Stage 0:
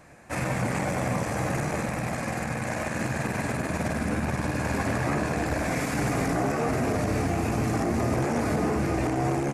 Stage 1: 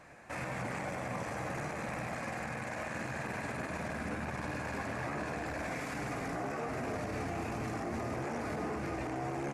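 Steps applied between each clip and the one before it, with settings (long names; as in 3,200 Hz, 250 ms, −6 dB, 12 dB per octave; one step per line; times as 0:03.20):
low-shelf EQ 470 Hz −7.5 dB
brickwall limiter −29 dBFS, peak gain reduction 10.5 dB
high-shelf EQ 5,800 Hz −10.5 dB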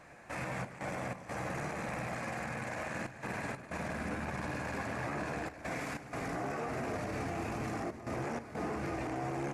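gate pattern "xxxx.xx.xxxxxxx" 93 BPM −12 dB
on a send at −16 dB: convolution reverb RT60 0.95 s, pre-delay 6 ms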